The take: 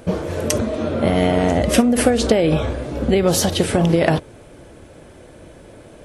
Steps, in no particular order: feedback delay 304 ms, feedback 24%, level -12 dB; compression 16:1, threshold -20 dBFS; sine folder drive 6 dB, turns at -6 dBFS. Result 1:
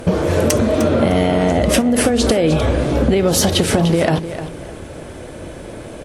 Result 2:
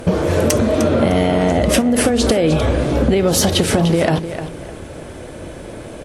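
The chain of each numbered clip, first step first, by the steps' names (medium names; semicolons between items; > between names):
compression > sine folder > feedback delay; compression > feedback delay > sine folder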